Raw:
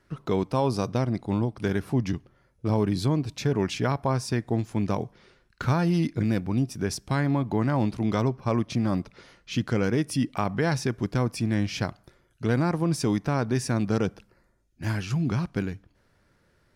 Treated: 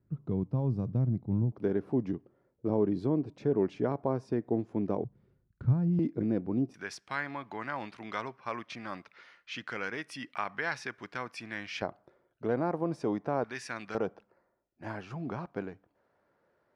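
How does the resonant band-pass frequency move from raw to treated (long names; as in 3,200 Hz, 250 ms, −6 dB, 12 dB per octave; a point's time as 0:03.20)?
resonant band-pass, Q 1.2
130 Hz
from 0:01.52 390 Hz
from 0:05.04 110 Hz
from 0:05.99 380 Hz
from 0:06.74 1,800 Hz
from 0:11.82 590 Hz
from 0:13.44 2,000 Hz
from 0:13.95 690 Hz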